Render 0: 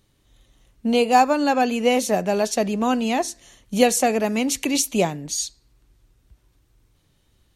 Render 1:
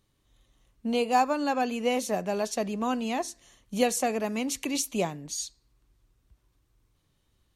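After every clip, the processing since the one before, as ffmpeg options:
-af "equalizer=f=1100:t=o:w=0.28:g=4.5,volume=0.398"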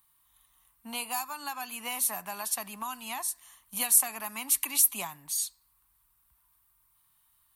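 -filter_complex "[0:a]aexciter=amount=8.6:drive=5.6:freq=9000,lowshelf=f=690:t=q:w=3:g=-12,acrossover=split=170|3000[s0][s1][s2];[s1]acompressor=threshold=0.02:ratio=6[s3];[s0][s3][s2]amix=inputs=3:normalize=0,volume=0.891"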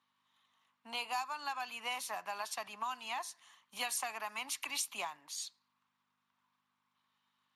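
-af "aeval=exprs='val(0)+0.000501*(sin(2*PI*50*n/s)+sin(2*PI*2*50*n/s)/2+sin(2*PI*3*50*n/s)/3+sin(2*PI*4*50*n/s)/4+sin(2*PI*5*50*n/s)/5)':c=same,highpass=450,lowpass=5700,volume=0.841" -ar 32000 -c:a libspeex -b:a 36k

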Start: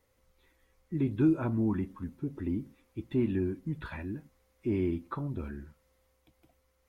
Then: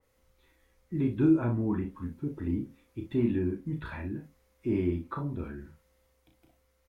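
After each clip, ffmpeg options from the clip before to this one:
-af "aecho=1:1:34|59:0.562|0.282,adynamicequalizer=threshold=0.00224:dfrequency=2800:dqfactor=0.7:tfrequency=2800:tqfactor=0.7:attack=5:release=100:ratio=0.375:range=3:mode=cutabove:tftype=highshelf"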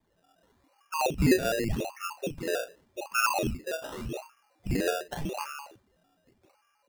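-af "lowpass=f=2500:t=q:w=0.5098,lowpass=f=2500:t=q:w=0.6013,lowpass=f=2500:t=q:w=0.9,lowpass=f=2500:t=q:w=2.563,afreqshift=-2900,acrusher=samples=16:mix=1:aa=0.000001:lfo=1:lforange=9.6:lforate=0.86"

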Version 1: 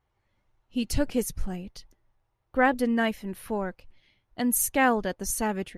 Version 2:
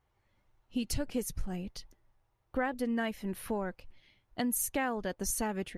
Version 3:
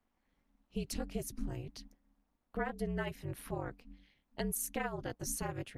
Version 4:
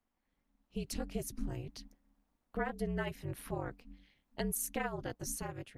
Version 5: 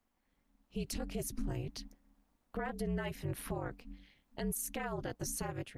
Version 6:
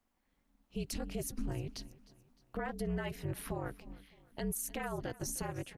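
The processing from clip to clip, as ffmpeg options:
-af "acompressor=threshold=0.0316:ratio=4"
-af "afreqshift=-52,tremolo=f=240:d=0.947,volume=0.891"
-af "dynaudnorm=f=210:g=7:m=1.78,volume=0.596"
-af "alimiter=level_in=2.24:limit=0.0631:level=0:latency=1:release=51,volume=0.447,volume=1.58"
-af "aecho=1:1:306|612|918:0.0944|0.0425|0.0191"

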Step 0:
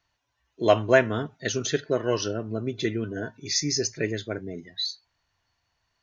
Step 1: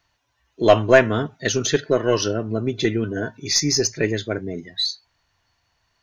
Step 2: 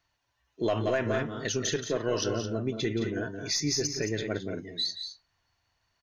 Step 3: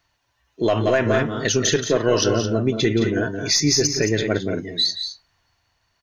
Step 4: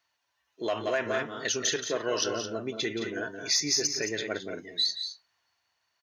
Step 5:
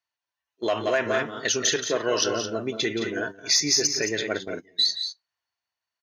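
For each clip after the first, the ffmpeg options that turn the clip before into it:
-af "aeval=exprs='0.631*(cos(1*acos(clip(val(0)/0.631,-1,1)))-cos(1*PI/2))+0.0316*(cos(4*acos(clip(val(0)/0.631,-1,1)))-cos(4*PI/2))':c=same,acontrast=37,volume=1.12"
-af "aecho=1:1:174.9|215.7:0.282|0.316,alimiter=limit=0.266:level=0:latency=1:release=51,volume=0.422"
-af "dynaudnorm=f=210:g=9:m=1.41,volume=2.37"
-af "highpass=f=670:p=1,volume=0.473"
-af "agate=range=0.141:threshold=0.0141:ratio=16:detection=peak,volume=1.78"

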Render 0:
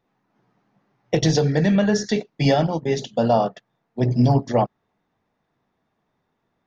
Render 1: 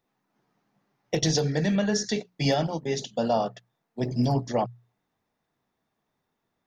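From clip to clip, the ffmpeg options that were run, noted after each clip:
-af "highshelf=f=4600:g=11,bandreject=f=60:t=h:w=6,bandreject=f=120:t=h:w=6,bandreject=f=180:t=h:w=6,volume=0.473"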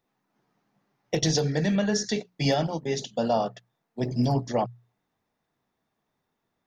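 -af anull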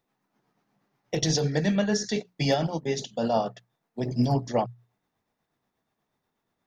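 -af "tremolo=f=8.3:d=0.39,volume=1.19"

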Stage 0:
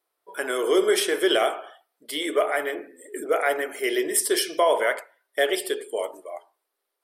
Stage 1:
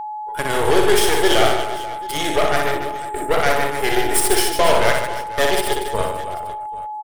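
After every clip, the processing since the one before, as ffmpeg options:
-af "aeval=exprs='0.376*(cos(1*acos(clip(val(0)/0.376,-1,1)))-cos(1*PI/2))+0.0668*(cos(8*acos(clip(val(0)/0.376,-1,1)))-cos(8*PI/2))':c=same,aecho=1:1:60|150|285|487.5|791.2:0.631|0.398|0.251|0.158|0.1,aeval=exprs='val(0)+0.0398*sin(2*PI*850*n/s)':c=same,volume=1.26"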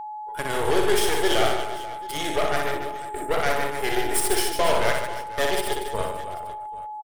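-af "aecho=1:1:145:0.0891,volume=0.501"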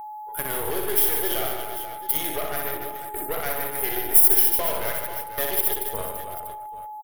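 -af "acompressor=threshold=0.0562:ratio=2,aexciter=amount=10.4:drive=8.8:freq=11000,volume=0.794"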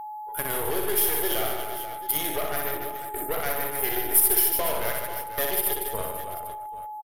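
-af "aresample=32000,aresample=44100"

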